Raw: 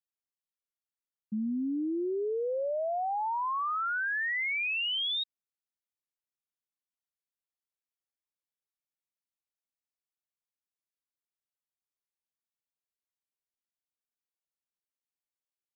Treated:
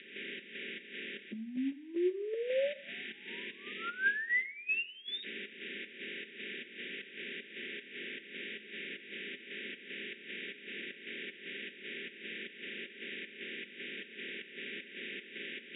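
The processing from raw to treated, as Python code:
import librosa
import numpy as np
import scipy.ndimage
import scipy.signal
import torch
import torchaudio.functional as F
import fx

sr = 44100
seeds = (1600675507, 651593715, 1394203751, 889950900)

y = fx.bin_compress(x, sr, power=0.4)
y = scipy.signal.sosfilt(scipy.signal.cheby2(4, 40, [610.0, 1300.0], 'bandstop', fs=sr, output='sos'), y)
y = fx.volume_shaper(y, sr, bpm=154, per_beat=1, depth_db=-12, release_ms=157.0, shape='slow start')
y = fx.low_shelf(y, sr, hz=210.0, db=-4.0)
y = fx.over_compress(y, sr, threshold_db=-39.0, ratio=-0.5)
y = fx.cabinet(y, sr, low_hz=160.0, low_slope=12, high_hz=2800.0, hz=(560.0, 800.0, 1400.0), db=(10, -9, 5))
y = y + 0.48 * np.pad(y, (int(5.1 * sr / 1000.0), 0))[:len(y)]
y = fx.rev_plate(y, sr, seeds[0], rt60_s=0.64, hf_ratio=1.0, predelay_ms=0, drr_db=14.0)
y = y * librosa.db_to_amplitude(4.5)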